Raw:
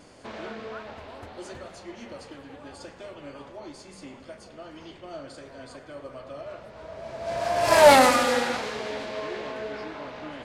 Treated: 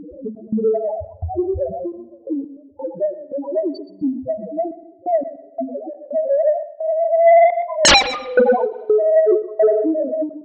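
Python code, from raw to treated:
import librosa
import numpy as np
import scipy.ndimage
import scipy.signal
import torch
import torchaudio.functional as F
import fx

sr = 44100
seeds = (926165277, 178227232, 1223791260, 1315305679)

p1 = fx.highpass(x, sr, hz=160.0, slope=6, at=(9.32, 9.98))
p2 = fx.rider(p1, sr, range_db=4, speed_s=2.0)
p3 = p1 + (p2 * 10.0 ** (2.0 / 20.0))
p4 = fx.spec_topn(p3, sr, count=1)
p5 = fx.step_gate(p4, sr, bpm=86, pattern='xx.xxx.xxxx..x..', floor_db=-24.0, edge_ms=4.5)
p6 = fx.fold_sine(p5, sr, drive_db=19, ceiling_db=-4.0)
p7 = fx.echo_feedback(p6, sr, ms=122, feedback_pct=17, wet_db=-15.5)
p8 = fx.rev_spring(p7, sr, rt60_s=1.2, pass_ms=(44,), chirp_ms=45, drr_db=18.5)
p9 = fx.end_taper(p8, sr, db_per_s=170.0)
y = p9 * 10.0 ** (-2.5 / 20.0)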